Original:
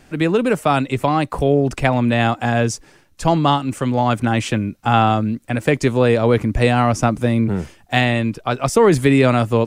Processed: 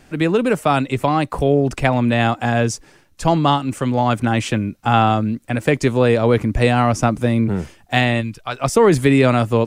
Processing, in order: 8.2–8.6 bell 790 Hz -> 170 Hz -13 dB 2.9 oct

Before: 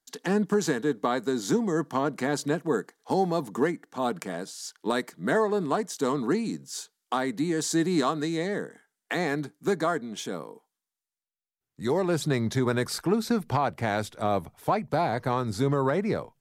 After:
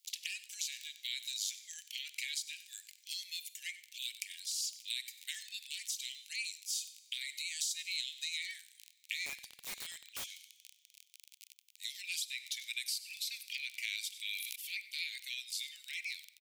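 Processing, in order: bell 8600 Hz -13 dB 2.8 oct; reverb removal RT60 0.99 s; high shelf 4600 Hz +5.5 dB; reverb, pre-delay 3 ms, DRR 18 dB; crackle 25/s -44 dBFS; steep high-pass 2300 Hz 72 dB/oct; echo 95 ms -21 dB; compressor 6:1, threshold -48 dBFS, peak gain reduction 11.5 dB; 9.26–10.33 wrapped overs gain 48 dB; harmonic-percussive split percussive -6 dB; 14.12–14.56 sustainer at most 21 dB/s; gain +17.5 dB

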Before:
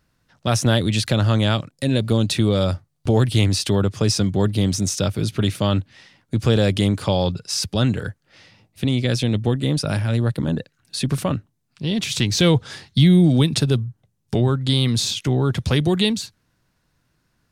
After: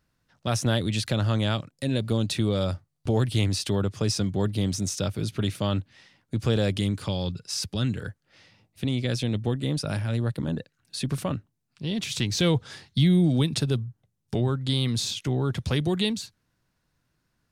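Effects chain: 6.75–8.02 dynamic EQ 720 Hz, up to -8 dB, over -35 dBFS, Q 0.96; gain -6.5 dB

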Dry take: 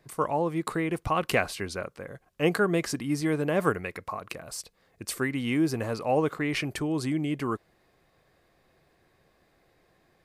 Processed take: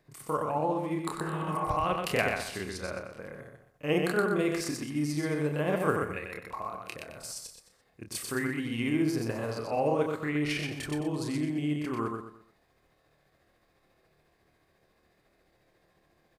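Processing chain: feedback echo 68 ms, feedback 34%, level -4 dB; spectral repair 0.8–1.07, 310–2500 Hz both; granular stretch 1.6×, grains 0.142 s; gain -3 dB

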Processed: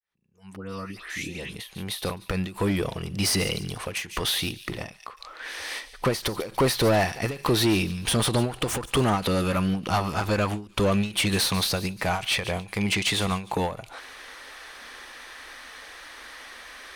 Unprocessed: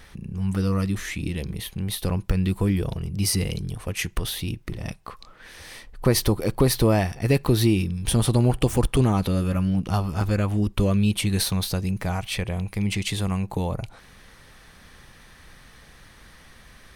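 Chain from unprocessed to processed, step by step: opening faded in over 3.18 s; spectral noise reduction 14 dB; in parallel at -2 dB: limiter -14 dBFS, peak gain reduction 7.5 dB; on the sum: added harmonics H 7 -34 dB, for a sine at -3.5 dBFS; 0.56–1.55 dispersion highs, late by 0.14 s, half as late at 1900 Hz; overdrive pedal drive 21 dB, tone 5100 Hz, clips at -4 dBFS; on a send: thin delay 0.144 s, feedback 38%, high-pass 3000 Hz, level -13 dB; on the sum: ending taper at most 150 dB/s; gain -8.5 dB

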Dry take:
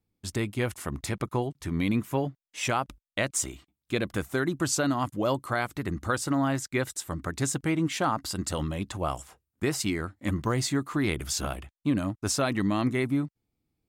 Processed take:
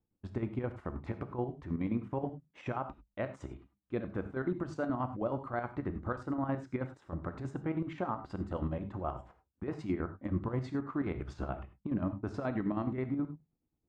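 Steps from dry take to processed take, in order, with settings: LPF 1200 Hz 12 dB/oct; notches 50/100/150/200 Hz; limiter -22.5 dBFS, peak gain reduction 6.5 dB; chopper 9.4 Hz, depth 60%, duty 55%; non-linear reverb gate 0.12 s flat, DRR 9 dB; gain -1.5 dB

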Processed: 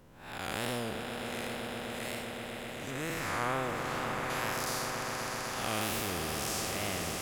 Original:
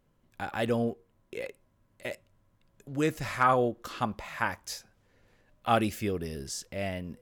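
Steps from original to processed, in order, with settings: time blur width 0.225 s; 2.9–4.3 resonant high shelf 2600 Hz -9 dB, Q 1.5; wow and flutter 91 cents; swelling echo 0.128 s, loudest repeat 5, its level -12.5 dB; spectral compressor 2:1

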